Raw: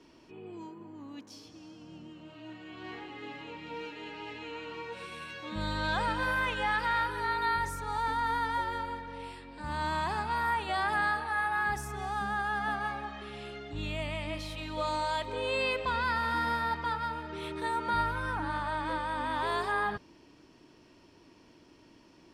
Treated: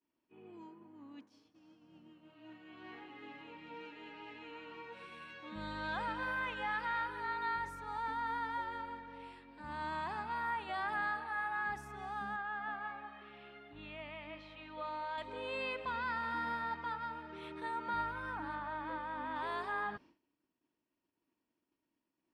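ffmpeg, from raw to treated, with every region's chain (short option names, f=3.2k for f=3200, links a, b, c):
-filter_complex "[0:a]asettb=1/sr,asplit=3[a][b][c];[a]atrim=end=12.364[d];[b]atrim=start=12.36:end=15.18,asetpts=PTS-STARTPTS,afade=t=in:d=0.004:c=qsin,afade=t=out:st=2.816:d=0.004:c=qsin,lowpass=3.2k,lowshelf=f=490:g=-6.5[e];[c]atrim=start=15.176[f];[d][e]acrossfade=d=0.004:c1=hsin:c2=qsin[g];[g][f]acrossfade=d=0.004:c1=qsin:c2=hsin,asettb=1/sr,asplit=3[h][i][j];[h]atrim=end=18.554[k];[i]atrim=start=18.55:end=19.36,asetpts=PTS-STARTPTS,afade=t=in:d=0.004:c=qsin,afade=t=out:st=0.806:d=0.004:c=qsin,lowpass=8.4k,equalizer=f=6.6k:t=o:w=1.6:g=-8[l];[j]atrim=start=19.356[m];[k][l]acrossfade=d=0.004:c1=hsin:c2=qsin[n];[n][m]acrossfade=d=0.004:c1=qsin:c2=hsin,bass=f=250:g=-15,treble=f=4k:g=-11,agate=range=-33dB:threshold=-49dB:ratio=3:detection=peak,lowshelf=f=320:t=q:w=1.5:g=6.5,volume=-6.5dB"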